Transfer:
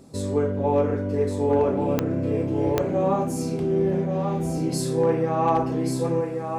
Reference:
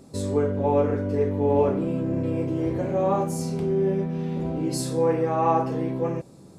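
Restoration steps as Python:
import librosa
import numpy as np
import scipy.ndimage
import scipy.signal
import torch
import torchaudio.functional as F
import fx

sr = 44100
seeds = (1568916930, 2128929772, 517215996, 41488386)

y = fx.fix_declip(x, sr, threshold_db=-12.0)
y = fx.fix_declick_ar(y, sr, threshold=10.0)
y = fx.fix_echo_inverse(y, sr, delay_ms=1133, level_db=-5.5)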